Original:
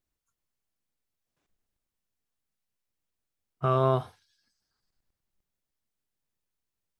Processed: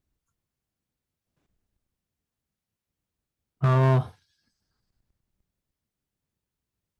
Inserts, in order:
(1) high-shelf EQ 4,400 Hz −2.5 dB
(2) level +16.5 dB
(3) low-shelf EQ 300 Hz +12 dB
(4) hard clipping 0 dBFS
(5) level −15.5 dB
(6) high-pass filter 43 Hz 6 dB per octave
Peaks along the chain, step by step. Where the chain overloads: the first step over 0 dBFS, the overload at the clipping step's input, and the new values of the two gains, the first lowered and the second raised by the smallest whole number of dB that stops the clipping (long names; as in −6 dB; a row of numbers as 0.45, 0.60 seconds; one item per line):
−11.0, +5.5, +9.0, 0.0, −15.5, −12.5 dBFS
step 2, 9.0 dB
step 2 +7.5 dB, step 5 −6.5 dB